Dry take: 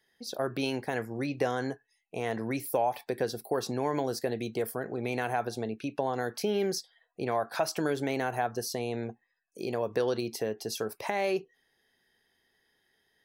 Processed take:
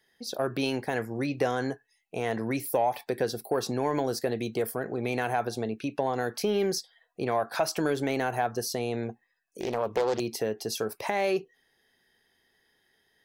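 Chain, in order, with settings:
in parallel at −8 dB: soft clipping −24 dBFS, distortion −15 dB
0:09.60–0:10.20: on the sum: highs frequency-modulated by the lows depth 0.41 ms

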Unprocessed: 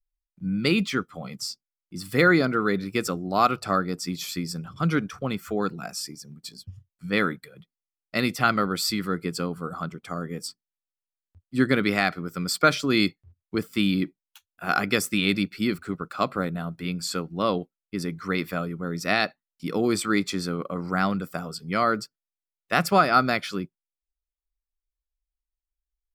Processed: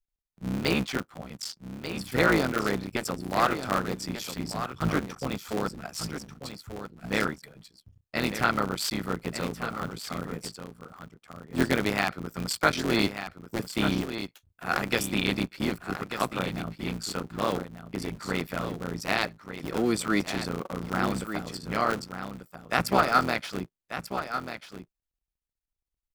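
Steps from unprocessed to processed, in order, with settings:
sub-harmonics by changed cycles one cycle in 3, muted
single-tap delay 1,190 ms −9.5 dB
level −2 dB

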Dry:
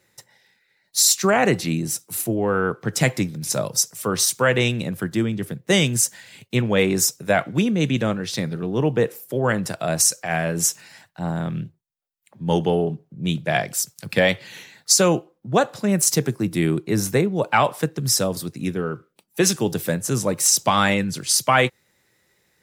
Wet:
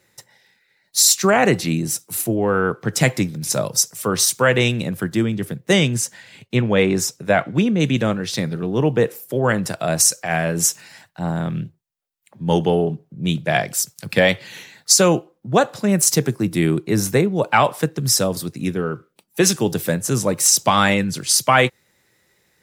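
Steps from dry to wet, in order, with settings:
0:05.73–0:07.80: low-pass filter 3,900 Hz 6 dB per octave
level +2.5 dB

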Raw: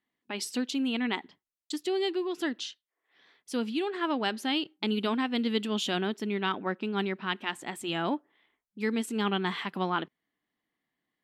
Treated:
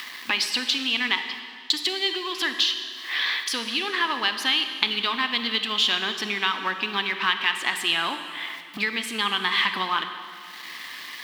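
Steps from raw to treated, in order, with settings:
mu-law and A-law mismatch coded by mu
high-pass filter 270 Hz 6 dB per octave
high-shelf EQ 5,100 Hz +6.5 dB
in parallel at −1 dB: upward compression, threshold −31 dBFS
on the sum: notch filter 1,400 Hz, Q 8
downward compressor 6 to 1, threshold −35 dBFS, peak gain reduction 15.5 dB
flat-topped bell 2,200 Hz +14.5 dB 2.7 octaves
convolution reverb RT60 2.2 s, pre-delay 28 ms, DRR 7.5 dB
level +2 dB

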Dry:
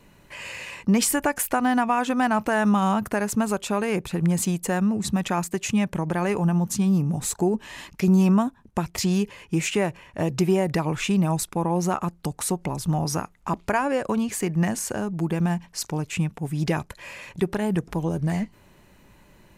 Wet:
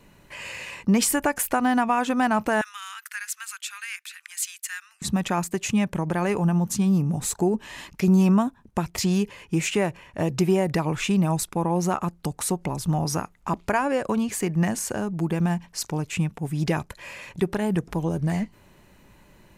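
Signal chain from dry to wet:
0:02.61–0:05.02: Butterworth high-pass 1,500 Hz 36 dB per octave

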